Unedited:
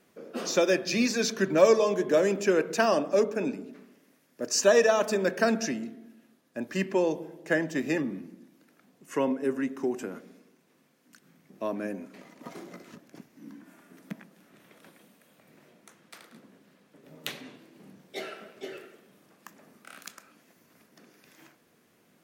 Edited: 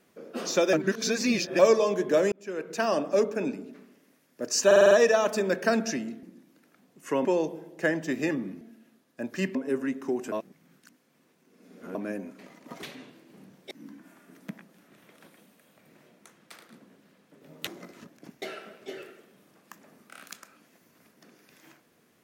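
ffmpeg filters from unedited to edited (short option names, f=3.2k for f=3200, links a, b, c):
-filter_complex "[0:a]asplit=19[a][b][c][d][e][f][g][h][i][j][k][l][m][n][o][p][q][r][s];[a]atrim=end=0.732[t];[b]atrim=start=0.728:end=1.592,asetpts=PTS-STARTPTS,areverse[u];[c]atrim=start=1.588:end=2.32,asetpts=PTS-STARTPTS,afade=t=out:st=0.728:d=0.004:c=hsin[v];[d]atrim=start=2.32:end=4.712,asetpts=PTS-STARTPTS,afade=t=in:d=0.74[w];[e]atrim=start=4.658:end=4.712[x];[f]atrim=start=4.658:end=4.712[y];[g]atrim=start=4.658:end=4.712[z];[h]atrim=start=4.658:end=4.712[aa];[i]atrim=start=4.658:end=5.982[ab];[j]atrim=start=8.278:end=9.302[ac];[k]atrim=start=6.918:end=8.282[ad];[l]atrim=start=5.978:end=6.922[ae];[m]atrim=start=9.298:end=10.072[af];[n]atrim=start=10.068:end=11.702,asetpts=PTS-STARTPTS,areverse[ag];[o]atrim=start=11.698:end=12.582[ah];[p]atrim=start=17.288:end=18.172[ai];[q]atrim=start=13.328:end=17.292[aj];[r]atrim=start=12.578:end=13.332[ak];[s]atrim=start=18.168[al];[t][u]acrossfade=d=0.004:c1=hsin:c2=hsin[am];[v][w]concat=n=2:v=0:a=1[an];[am][an]acrossfade=d=0.004:c1=hsin:c2=hsin[ao];[ao][x]acrossfade=d=0.004:c1=hsin:c2=hsin[ap];[ap][y]acrossfade=d=0.004:c1=hsin:c2=hsin[aq];[aq][z]acrossfade=d=0.004:c1=hsin:c2=hsin[ar];[ar][aa]acrossfade=d=0.004:c1=hsin:c2=hsin[as];[as][ab]acrossfade=d=0.004:c1=hsin:c2=hsin[at];[at][ac]acrossfade=d=0.004:c1=hsin:c2=hsin[au];[au][ad]acrossfade=d=0.004:c1=hsin:c2=hsin[av];[av][ae]acrossfade=d=0.004:c1=hsin:c2=hsin[aw];[aw][af]acrossfade=d=0.004:c1=hsin:c2=hsin[ax];[ax][ag]acrossfade=d=0.004:c1=hsin:c2=hsin[ay];[ay][ah]acrossfade=d=0.004:c1=hsin:c2=hsin[az];[az][ai]acrossfade=d=0.004:c1=hsin:c2=hsin[ba];[ba][aj]acrossfade=d=0.004:c1=hsin:c2=hsin[bb];[bb][ak]acrossfade=d=0.004:c1=hsin:c2=hsin[bc];[bc][al]acrossfade=d=0.004:c1=hsin:c2=hsin"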